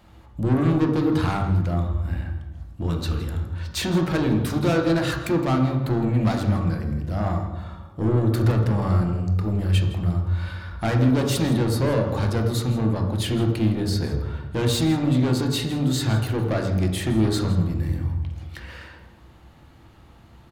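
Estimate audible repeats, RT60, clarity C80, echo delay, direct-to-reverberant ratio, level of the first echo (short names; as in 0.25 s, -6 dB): 1, 1.1 s, 7.0 dB, 0.163 s, 2.5 dB, -16.0 dB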